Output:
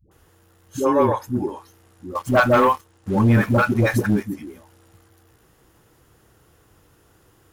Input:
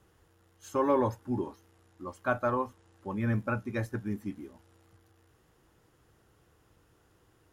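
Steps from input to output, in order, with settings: phase dispersion highs, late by 114 ms, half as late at 450 Hz; 2.15–4.23 s: waveshaping leveller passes 2; treble shelf 9.6 kHz +8 dB; trim +8.5 dB

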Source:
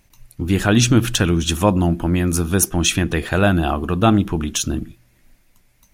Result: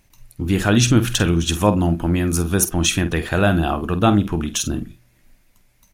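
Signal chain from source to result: doubling 48 ms -12 dB; trim -1 dB

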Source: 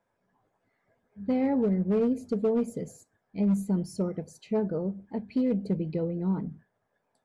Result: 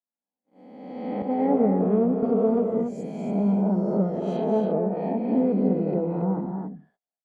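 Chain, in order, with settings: reverse spectral sustain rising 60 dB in 1.50 s; gate -54 dBFS, range -37 dB; resonant low shelf 150 Hz -8.5 dB, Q 1.5; low-pass that closes with the level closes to 1.3 kHz, closed at -24 dBFS; small resonant body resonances 730/3300 Hz, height 11 dB, ringing for 20 ms; on a send: loudspeakers at several distances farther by 72 m -9 dB, 95 m -6 dB; 1.22–2.23 s: on the sum: three bands expanded up and down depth 100%

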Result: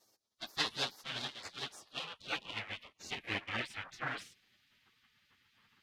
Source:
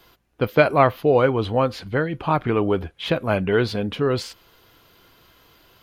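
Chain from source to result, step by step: comb filter that takes the minimum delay 9.5 ms; band-pass sweep 2.5 kHz -> 620 Hz, 1.60–5.07 s; spectral gate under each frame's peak -20 dB weak; trim +10.5 dB

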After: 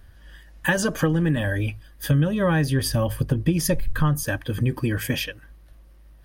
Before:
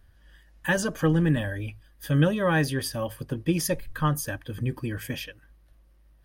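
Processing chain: 2.11–4.23 s: bass shelf 160 Hz +11.5 dB; compression 6:1, threshold -26 dBFS, peak gain reduction 14.5 dB; trim +8.5 dB

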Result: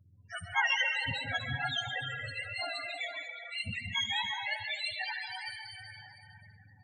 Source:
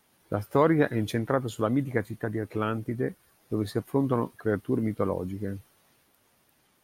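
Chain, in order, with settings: spectrum inverted on a logarithmic axis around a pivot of 950 Hz; plate-style reverb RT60 3.8 s, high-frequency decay 0.65×, pre-delay 115 ms, DRR -1 dB; loudest bins only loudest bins 16; graphic EQ 125/250/500/1000/4000/8000 Hz +4/-6/-12/+6/+3/-11 dB; thinning echo 70 ms, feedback 55%, high-pass 240 Hz, level -18 dB; trim -2.5 dB

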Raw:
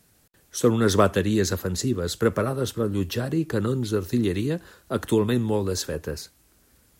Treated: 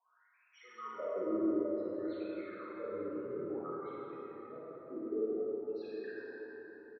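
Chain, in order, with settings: 3.92–6.20 s: resonances exaggerated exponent 1.5; low-pass 4.9 kHz 12 dB/octave; compression 4:1, threshold -35 dBFS, peak gain reduction 18 dB; wah-wah 0.56 Hz 310–2500 Hz, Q 14; vibrato 4.8 Hz 47 cents; loudest bins only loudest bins 16; multi-tap echo 53/320 ms -5.5/-16.5 dB; plate-style reverb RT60 4.9 s, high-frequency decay 0.4×, DRR -9 dB; trim +4 dB

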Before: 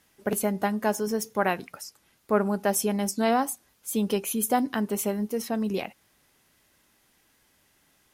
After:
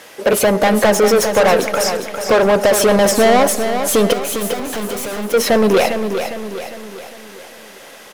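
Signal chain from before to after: peaking EQ 520 Hz +12 dB 0.65 oct; compression, threshold -20 dBFS, peak gain reduction 8 dB; overdrive pedal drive 28 dB, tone 4.6 kHz, clips at -10.5 dBFS; 4.13–5.34 s: overload inside the chain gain 30.5 dB; feedback delay 404 ms, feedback 48%, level -8 dB; on a send at -18.5 dB: reverberation RT60 1.4 s, pre-delay 80 ms; on the sum: trim +5.5 dB

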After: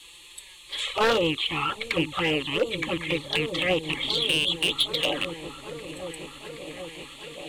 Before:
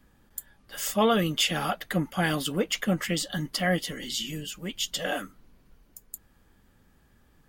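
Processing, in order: rattle on loud lows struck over -39 dBFS, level -20 dBFS; high-pass 72 Hz 6 dB/octave; low-pass that closes with the level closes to 1.2 kHz, closed at -24.5 dBFS; added noise blue -46 dBFS; in parallel at -10.5 dB: crossover distortion -47 dBFS; on the sum: low-pass 7.6 kHz 24 dB/octave; peaking EQ 3.2 kHz +11 dB 1.8 oct; static phaser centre 1 kHz, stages 8; touch-sensitive flanger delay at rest 6.9 ms, full sweep at -23.5 dBFS; hard clipper -23.5 dBFS, distortion -12 dB; on a send: delay with an opening low-pass 776 ms, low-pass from 200 Hz, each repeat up 1 oct, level -6 dB; on the sum: formant shift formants +2 st; trim +6.5 dB

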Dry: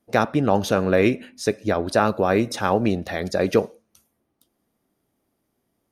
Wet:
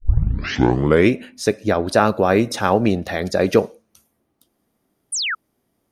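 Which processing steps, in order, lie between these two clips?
tape start-up on the opening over 1.10 s; painted sound fall, 5.12–5.35 s, 1.2–10 kHz -26 dBFS; trim +3.5 dB

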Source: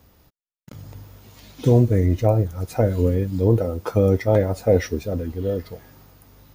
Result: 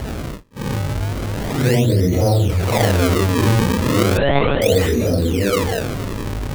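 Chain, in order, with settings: phase randomisation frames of 200 ms; decimation with a swept rate 36×, swing 160% 0.35 Hz; 4.17–4.62 s: monotone LPC vocoder at 8 kHz 140 Hz; level flattener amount 70%; trim -1 dB

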